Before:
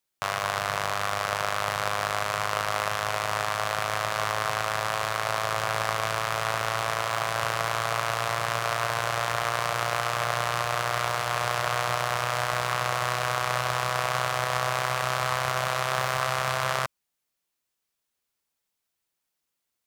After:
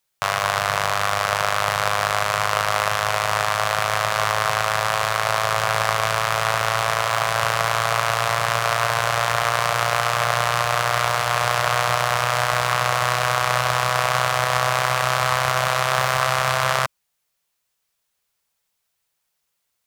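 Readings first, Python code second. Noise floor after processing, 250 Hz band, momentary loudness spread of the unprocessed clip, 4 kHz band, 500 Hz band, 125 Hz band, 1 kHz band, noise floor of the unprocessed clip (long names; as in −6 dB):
−75 dBFS, +4.0 dB, 1 LU, +7.0 dB, +6.0 dB, +6.5 dB, +7.0 dB, −82 dBFS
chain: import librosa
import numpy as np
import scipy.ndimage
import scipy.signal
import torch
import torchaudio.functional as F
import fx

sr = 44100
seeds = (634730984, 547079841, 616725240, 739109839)

y = fx.peak_eq(x, sr, hz=290.0, db=-12.0, octaves=0.52)
y = y * 10.0 ** (7.0 / 20.0)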